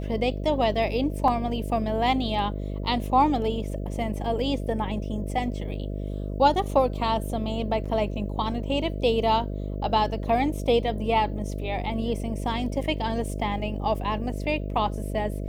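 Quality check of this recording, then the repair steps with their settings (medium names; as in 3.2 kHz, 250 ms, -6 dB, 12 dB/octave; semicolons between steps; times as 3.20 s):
buzz 50 Hz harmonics 13 -31 dBFS
1.28 s: dropout 2.9 ms
7.85–7.86 s: dropout 5.8 ms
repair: de-hum 50 Hz, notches 13; interpolate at 1.28 s, 2.9 ms; interpolate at 7.85 s, 5.8 ms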